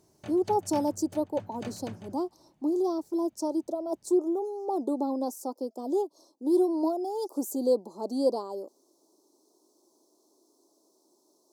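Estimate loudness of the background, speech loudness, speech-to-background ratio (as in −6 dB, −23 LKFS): −46.5 LKFS, −30.0 LKFS, 16.5 dB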